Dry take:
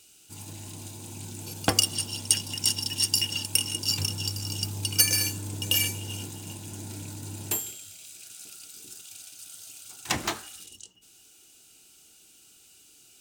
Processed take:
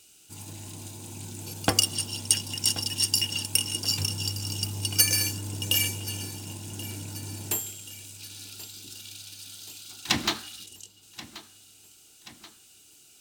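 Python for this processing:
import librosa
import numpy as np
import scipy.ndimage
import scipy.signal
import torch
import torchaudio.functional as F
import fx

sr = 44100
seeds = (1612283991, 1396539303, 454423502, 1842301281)

y = fx.graphic_eq(x, sr, hz=(250, 500, 4000, 8000), db=(7, -5, 9, -4), at=(8.19, 10.66))
y = fx.echo_feedback(y, sr, ms=1081, feedback_pct=54, wet_db=-17)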